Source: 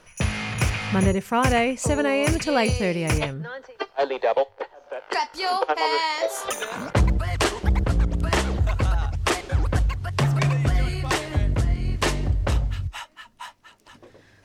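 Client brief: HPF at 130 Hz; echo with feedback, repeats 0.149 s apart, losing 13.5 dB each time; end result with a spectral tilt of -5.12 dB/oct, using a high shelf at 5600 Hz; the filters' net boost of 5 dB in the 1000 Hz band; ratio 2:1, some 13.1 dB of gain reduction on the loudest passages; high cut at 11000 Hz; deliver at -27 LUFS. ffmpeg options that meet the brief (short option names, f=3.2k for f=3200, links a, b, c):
-af "highpass=130,lowpass=11k,equalizer=f=1k:t=o:g=6.5,highshelf=f=5.6k:g=-5,acompressor=threshold=-39dB:ratio=2,aecho=1:1:149|298:0.211|0.0444,volume=7.5dB"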